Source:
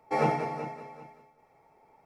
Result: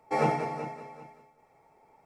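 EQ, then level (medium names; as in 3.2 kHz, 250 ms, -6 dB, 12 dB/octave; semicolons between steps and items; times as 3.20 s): peaking EQ 7.9 kHz +5 dB 0.48 oct; 0.0 dB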